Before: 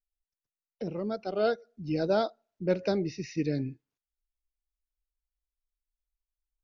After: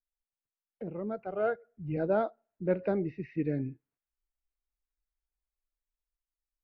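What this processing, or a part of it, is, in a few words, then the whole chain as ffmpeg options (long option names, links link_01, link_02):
action camera in a waterproof case: -filter_complex "[0:a]asettb=1/sr,asplit=3[link_01][link_02][link_03];[link_01]atrim=end=1.184[link_04];[link_02]atrim=start=1.18:end=1.97,asetpts=PTS-STARTPTS,afade=type=in:duration=0.004:curve=qsin,afade=type=out:start_time=0.786:duration=0.004:curve=qsin,equalizer=frequency=125:width_type=o:width=1:gain=7,equalizer=frequency=250:width_type=o:width=1:gain=-9,equalizer=frequency=2000:width_type=o:width=1:gain=3,equalizer=frequency=4000:width_type=o:width=1:gain=-6[link_05];[link_03]atrim=start=1.966[link_06];[link_04][link_05]acrossfade=duration=0.004:curve1=hsin:curve2=qsin[link_07];[link_07][link_06]acrossfade=duration=0.004:curve1=qsin:curve2=hsin,lowpass=frequency=2200:width=0.5412,lowpass=frequency=2200:width=1.3066,dynaudnorm=framelen=210:gausssize=9:maxgain=4.5dB,volume=-6dB" -ar 22050 -c:a aac -b:a 48k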